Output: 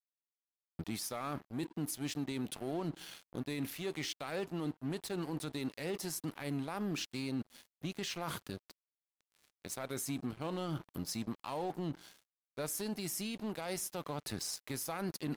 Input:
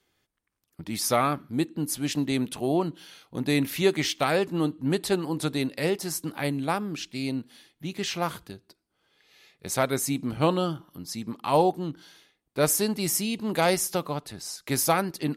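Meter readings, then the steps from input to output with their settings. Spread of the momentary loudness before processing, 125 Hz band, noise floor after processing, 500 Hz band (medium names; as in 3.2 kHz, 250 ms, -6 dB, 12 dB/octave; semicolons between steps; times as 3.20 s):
13 LU, -10.5 dB, under -85 dBFS, -14.5 dB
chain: reverse; compression 10:1, threshold -34 dBFS, peak gain reduction 18 dB; reverse; crossover distortion -50.5 dBFS; peak limiter -33.5 dBFS, peak gain reduction 9 dB; trim +4.5 dB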